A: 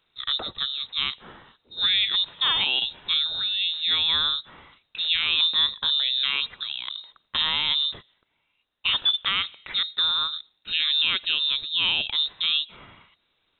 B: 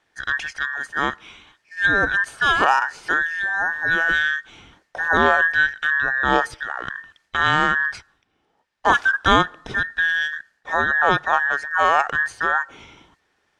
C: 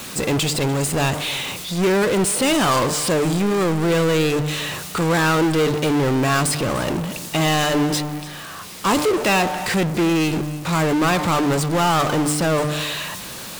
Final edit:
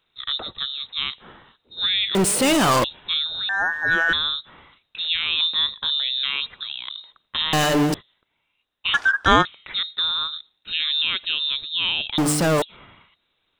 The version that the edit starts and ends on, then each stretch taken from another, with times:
A
2.15–2.84 from C
3.49–4.13 from B
7.53–7.94 from C
8.94–9.45 from B
12.18–12.62 from C

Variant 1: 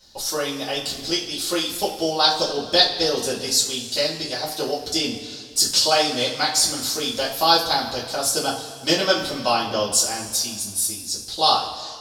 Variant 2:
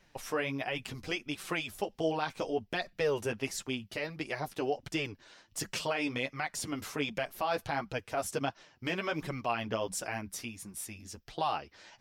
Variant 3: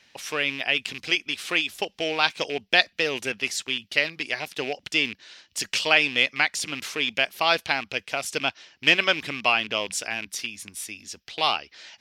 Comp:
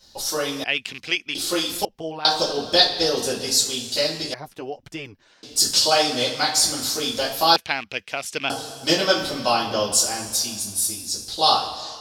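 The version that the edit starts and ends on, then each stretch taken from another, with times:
1
0.64–1.35 from 3
1.85–2.25 from 2
4.34–5.43 from 2
7.56–8.5 from 3

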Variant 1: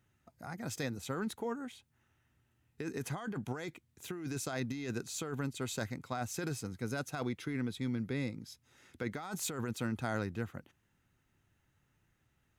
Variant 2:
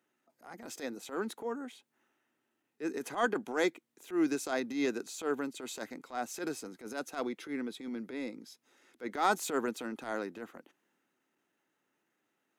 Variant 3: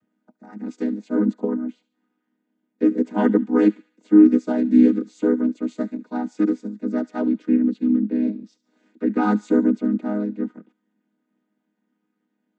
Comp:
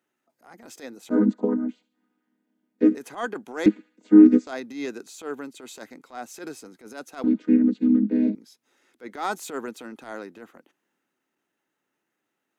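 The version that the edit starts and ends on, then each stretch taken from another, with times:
2
1.1–2.95 from 3
3.66–4.47 from 3
7.24–8.35 from 3
not used: 1

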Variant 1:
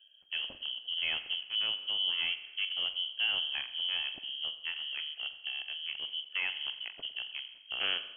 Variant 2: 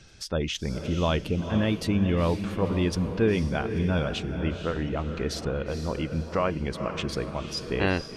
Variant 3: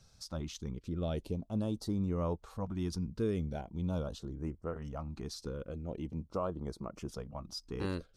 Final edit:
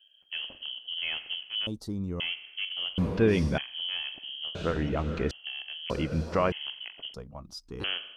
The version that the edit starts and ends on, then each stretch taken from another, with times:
1
1.67–2.2 from 3
2.98–3.58 from 2
4.55–5.31 from 2
5.9–6.52 from 2
7.14–7.84 from 3

